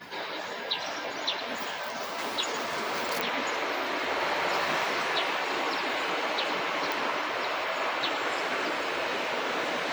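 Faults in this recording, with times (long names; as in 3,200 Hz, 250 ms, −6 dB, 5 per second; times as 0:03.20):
0:03.21: click
0:06.92: click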